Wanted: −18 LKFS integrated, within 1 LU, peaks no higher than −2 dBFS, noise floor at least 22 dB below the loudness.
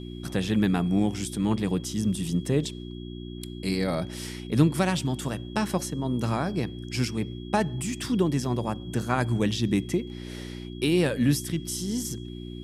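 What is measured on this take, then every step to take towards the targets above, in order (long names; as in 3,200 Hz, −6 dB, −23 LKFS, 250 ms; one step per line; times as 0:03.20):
mains hum 60 Hz; hum harmonics up to 360 Hz; level of the hum −35 dBFS; interfering tone 3,300 Hz; level of the tone −49 dBFS; integrated loudness −27.5 LKFS; sample peak −8.0 dBFS; target loudness −18.0 LKFS
→ hum removal 60 Hz, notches 6
notch filter 3,300 Hz, Q 30
level +9.5 dB
brickwall limiter −2 dBFS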